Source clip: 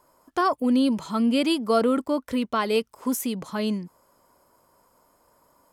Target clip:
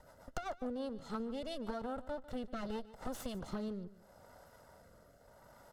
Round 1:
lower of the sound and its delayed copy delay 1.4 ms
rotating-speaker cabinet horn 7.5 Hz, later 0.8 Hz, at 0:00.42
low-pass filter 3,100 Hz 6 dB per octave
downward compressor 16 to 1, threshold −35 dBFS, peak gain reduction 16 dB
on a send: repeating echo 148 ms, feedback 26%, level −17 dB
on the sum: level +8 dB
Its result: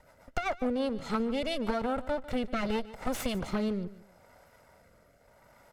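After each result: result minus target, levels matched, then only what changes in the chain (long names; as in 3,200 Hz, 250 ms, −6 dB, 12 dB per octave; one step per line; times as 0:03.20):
downward compressor: peak gain reduction −9.5 dB; 2,000 Hz band +3.5 dB
change: downward compressor 16 to 1, threshold −45.5 dBFS, peak gain reduction 25.5 dB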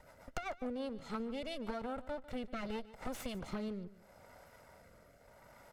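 2,000 Hz band +3.5 dB
add after low-pass filter: parametric band 2,300 Hz −12 dB 0.43 octaves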